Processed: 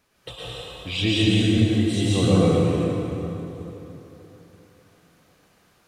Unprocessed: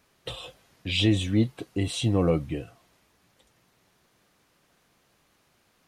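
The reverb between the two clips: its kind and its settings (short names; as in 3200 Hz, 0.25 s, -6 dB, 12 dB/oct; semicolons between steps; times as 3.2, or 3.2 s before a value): plate-style reverb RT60 3.6 s, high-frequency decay 0.65×, pre-delay 0.1 s, DRR -7.5 dB; gain -2 dB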